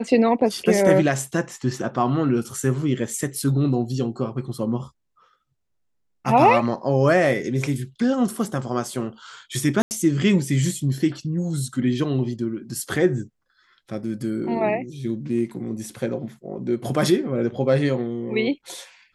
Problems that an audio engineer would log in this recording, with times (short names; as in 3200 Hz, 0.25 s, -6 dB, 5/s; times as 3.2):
9.82–9.91 gap 89 ms